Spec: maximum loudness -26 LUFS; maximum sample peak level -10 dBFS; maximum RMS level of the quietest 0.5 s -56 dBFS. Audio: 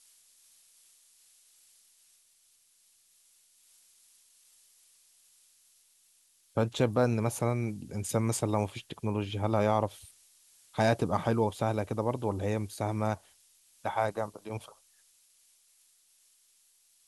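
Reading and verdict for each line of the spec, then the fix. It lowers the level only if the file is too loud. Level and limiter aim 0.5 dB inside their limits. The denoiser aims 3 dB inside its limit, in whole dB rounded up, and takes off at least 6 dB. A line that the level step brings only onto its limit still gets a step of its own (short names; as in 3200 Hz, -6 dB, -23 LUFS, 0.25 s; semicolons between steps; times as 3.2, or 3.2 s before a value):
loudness -31.0 LUFS: OK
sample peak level -12.0 dBFS: OK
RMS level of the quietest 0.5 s -66 dBFS: OK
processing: none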